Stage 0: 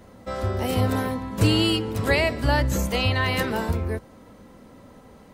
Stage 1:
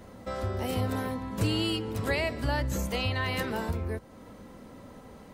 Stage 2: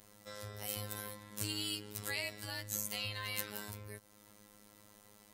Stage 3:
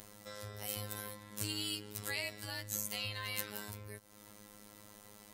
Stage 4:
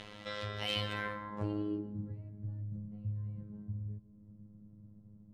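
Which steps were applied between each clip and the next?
downward compressor 1.5 to 1, threshold −39 dBFS, peak gain reduction 9 dB
first-order pre-emphasis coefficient 0.9; phases set to zero 104 Hz; level +4.5 dB
upward compression, threshold −45 dBFS
low-pass filter sweep 3,100 Hz → 150 Hz, 0:00.84–0:02.15; convolution reverb RT60 1.1 s, pre-delay 122 ms, DRR 12.5 dB; level +6 dB

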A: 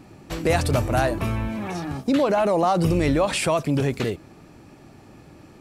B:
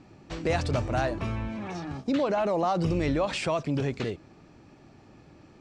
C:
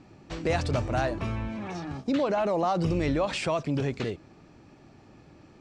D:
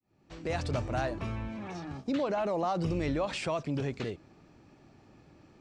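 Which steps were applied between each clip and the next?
low-pass filter 6,800 Hz 24 dB per octave; level −6 dB
no processing that can be heard
fade in at the beginning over 0.66 s; level −4.5 dB

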